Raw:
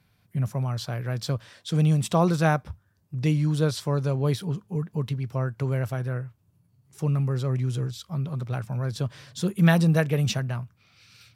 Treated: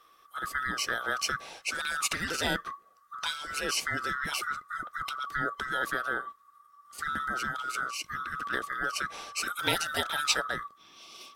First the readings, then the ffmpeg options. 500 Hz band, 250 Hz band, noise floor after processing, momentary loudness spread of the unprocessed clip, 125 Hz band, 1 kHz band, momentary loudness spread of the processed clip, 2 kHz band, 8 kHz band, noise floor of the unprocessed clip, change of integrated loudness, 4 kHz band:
-10.5 dB, -17.0 dB, -61 dBFS, 11 LU, -25.5 dB, +2.0 dB, 9 LU, +6.0 dB, +5.0 dB, -66 dBFS, -5.5 dB, +5.0 dB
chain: -af "afftfilt=real='real(if(lt(b,960),b+48*(1-2*mod(floor(b/48),2)),b),0)':imag='imag(if(lt(b,960),b+48*(1-2*mod(floor(b/48),2)),b),0)':win_size=2048:overlap=0.75,afftfilt=real='re*lt(hypot(re,im),0.178)':imag='im*lt(hypot(re,im),0.178)':win_size=1024:overlap=0.75,lowshelf=f=170:g=-6,volume=1.78"

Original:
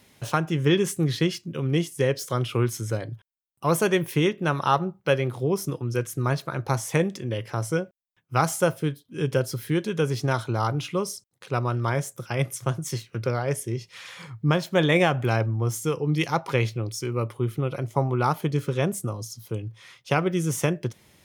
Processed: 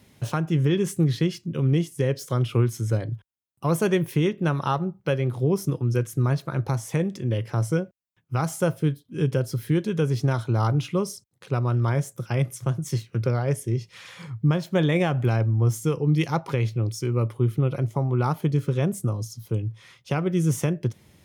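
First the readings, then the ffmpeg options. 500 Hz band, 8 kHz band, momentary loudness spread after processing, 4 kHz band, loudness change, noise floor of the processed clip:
-1.5 dB, -3.5 dB, 7 LU, -4.5 dB, +1.0 dB, -64 dBFS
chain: -af "highpass=42,lowshelf=f=320:g=9.5,alimiter=limit=0.335:level=0:latency=1:release=301,volume=0.75"

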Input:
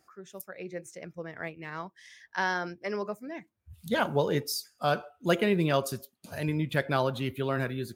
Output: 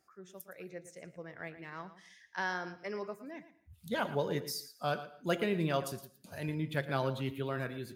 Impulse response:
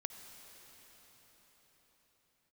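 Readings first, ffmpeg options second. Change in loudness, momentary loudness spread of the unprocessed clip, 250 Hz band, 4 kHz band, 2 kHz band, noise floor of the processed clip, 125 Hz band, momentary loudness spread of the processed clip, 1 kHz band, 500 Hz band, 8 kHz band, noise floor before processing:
-6.0 dB, 16 LU, -6.5 dB, -6.5 dB, -6.0 dB, -67 dBFS, -5.5 dB, 16 LU, -6.5 dB, -6.5 dB, -6.5 dB, -72 dBFS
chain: -filter_complex "[0:a]flanger=delay=5.1:depth=2.4:regen=88:speed=0.49:shape=sinusoidal,asplit=2[s0][s1];[1:a]atrim=start_sample=2205,afade=t=out:st=0.22:d=0.01,atrim=end_sample=10143,adelay=114[s2];[s1][s2]afir=irnorm=-1:irlink=0,volume=0.299[s3];[s0][s3]amix=inputs=2:normalize=0,volume=0.794"

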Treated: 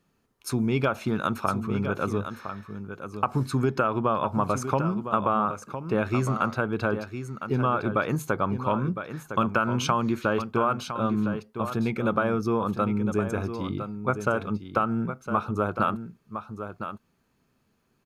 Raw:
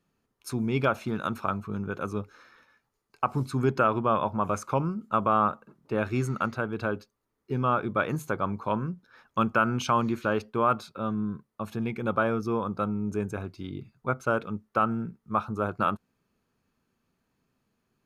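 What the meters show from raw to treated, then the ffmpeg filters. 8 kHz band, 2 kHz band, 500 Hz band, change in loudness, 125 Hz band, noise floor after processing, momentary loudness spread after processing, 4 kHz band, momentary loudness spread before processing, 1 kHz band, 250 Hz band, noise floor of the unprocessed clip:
+4.5 dB, +1.5 dB, +2.0 dB, +1.5 dB, +3.0 dB, -70 dBFS, 11 LU, +3.5 dB, 11 LU, +1.0 dB, +3.0 dB, -79 dBFS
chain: -af "acompressor=threshold=0.0562:ratio=6,aecho=1:1:1009:0.335,volume=1.78"

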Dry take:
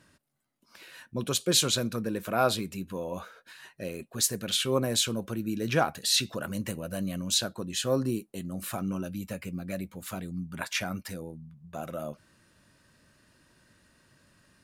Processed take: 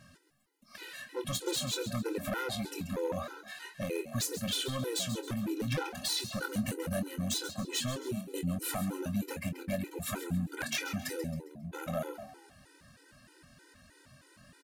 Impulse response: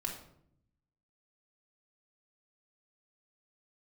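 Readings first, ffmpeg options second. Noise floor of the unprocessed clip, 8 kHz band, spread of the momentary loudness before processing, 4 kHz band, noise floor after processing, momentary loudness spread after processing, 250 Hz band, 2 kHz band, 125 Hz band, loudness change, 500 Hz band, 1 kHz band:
-67 dBFS, -7.0 dB, 15 LU, -6.5 dB, -62 dBFS, 9 LU, -3.0 dB, -3.0 dB, -2.5 dB, -5.5 dB, -5.0 dB, -7.0 dB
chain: -filter_complex "[0:a]acompressor=threshold=0.0224:ratio=8,aeval=exprs='0.0335*(abs(mod(val(0)/0.0335+3,4)-2)-1)':c=same,asplit=2[s0][s1];[s1]adelay=24,volume=0.355[s2];[s0][s2]amix=inputs=2:normalize=0,asplit=5[s3][s4][s5][s6][s7];[s4]adelay=135,afreqshift=61,volume=0.282[s8];[s5]adelay=270,afreqshift=122,volume=0.11[s9];[s6]adelay=405,afreqshift=183,volume=0.0427[s10];[s7]adelay=540,afreqshift=244,volume=0.0168[s11];[s3][s8][s9][s10][s11]amix=inputs=5:normalize=0,afftfilt=real='re*gt(sin(2*PI*3.2*pts/sr)*(1-2*mod(floor(b*sr/1024/260),2)),0)':imag='im*gt(sin(2*PI*3.2*pts/sr)*(1-2*mod(floor(b*sr/1024/260),2)),0)':win_size=1024:overlap=0.75,volume=2"

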